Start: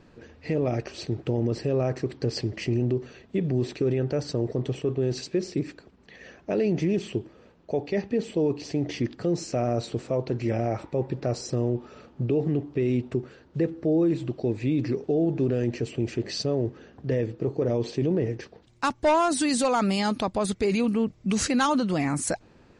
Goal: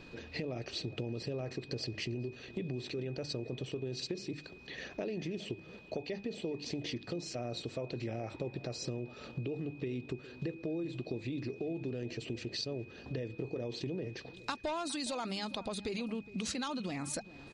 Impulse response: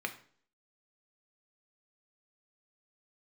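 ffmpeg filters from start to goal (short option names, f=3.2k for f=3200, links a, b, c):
-filter_complex "[0:a]equalizer=f=3.8k:t=o:w=0.82:g=10,bandreject=f=50:t=h:w=6,bandreject=f=100:t=h:w=6,bandreject=f=150:t=h:w=6,bandreject=f=200:t=h:w=6,acompressor=threshold=-38dB:ratio=5,aeval=exprs='val(0)+0.00141*sin(2*PI*2500*n/s)':c=same,atempo=1.3,asplit=2[a][b];[b]adelay=413,lowpass=f=1.5k:p=1,volume=-17dB,asplit=2[c][d];[d]adelay=413,lowpass=f=1.5k:p=1,volume=0.28,asplit=2[e][f];[f]adelay=413,lowpass=f=1.5k:p=1,volume=0.28[g];[a][c][e][g]amix=inputs=4:normalize=0,volume=1dB"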